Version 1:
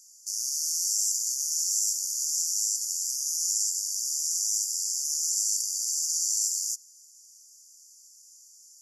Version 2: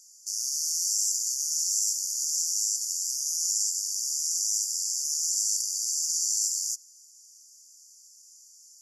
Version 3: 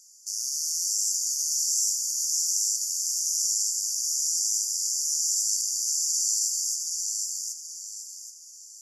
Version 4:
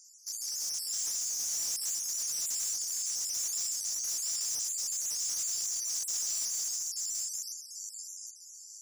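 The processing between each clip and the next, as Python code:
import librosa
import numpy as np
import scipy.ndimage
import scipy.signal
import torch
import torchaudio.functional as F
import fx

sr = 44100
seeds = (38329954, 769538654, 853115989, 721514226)

y1 = fx.high_shelf(x, sr, hz=6400.0, db=-6.5)
y1 = F.gain(torch.from_numpy(y1), 3.5).numpy()
y2 = fx.echo_feedback(y1, sr, ms=776, feedback_pct=35, wet_db=-3.5)
y3 = fx.spec_dropout(y2, sr, seeds[0], share_pct=30)
y3 = np.clip(y3, -10.0 ** (-28.5 / 20.0), 10.0 ** (-28.5 / 20.0))
y3 = F.gain(torch.from_numpy(y3), -2.0).numpy()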